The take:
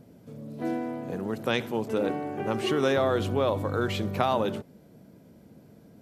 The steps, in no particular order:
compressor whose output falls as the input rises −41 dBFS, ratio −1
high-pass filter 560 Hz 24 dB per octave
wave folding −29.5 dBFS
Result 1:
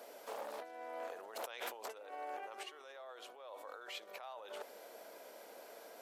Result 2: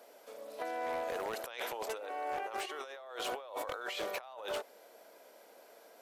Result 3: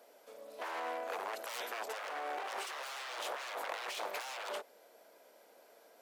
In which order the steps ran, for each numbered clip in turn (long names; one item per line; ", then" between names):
compressor whose output falls as the input rises, then wave folding, then high-pass filter
high-pass filter, then compressor whose output falls as the input rises, then wave folding
wave folding, then high-pass filter, then compressor whose output falls as the input rises